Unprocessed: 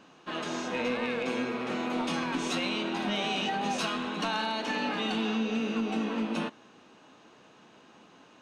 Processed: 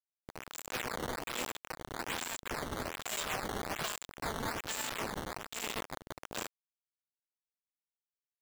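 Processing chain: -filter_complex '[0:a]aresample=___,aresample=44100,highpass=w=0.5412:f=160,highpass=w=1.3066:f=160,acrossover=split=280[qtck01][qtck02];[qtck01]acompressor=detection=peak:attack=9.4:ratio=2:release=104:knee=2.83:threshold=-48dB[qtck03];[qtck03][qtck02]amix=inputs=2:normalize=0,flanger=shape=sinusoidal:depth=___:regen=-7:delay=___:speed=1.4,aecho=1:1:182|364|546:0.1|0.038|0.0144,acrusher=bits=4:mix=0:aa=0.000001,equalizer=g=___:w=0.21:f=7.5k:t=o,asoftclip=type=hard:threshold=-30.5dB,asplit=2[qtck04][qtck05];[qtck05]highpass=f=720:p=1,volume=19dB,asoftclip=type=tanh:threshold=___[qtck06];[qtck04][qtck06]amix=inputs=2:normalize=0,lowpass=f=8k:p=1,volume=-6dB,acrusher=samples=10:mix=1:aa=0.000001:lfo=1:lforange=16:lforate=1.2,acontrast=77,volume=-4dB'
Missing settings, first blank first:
22050, 1.6, 0.3, 6.5, -30.5dB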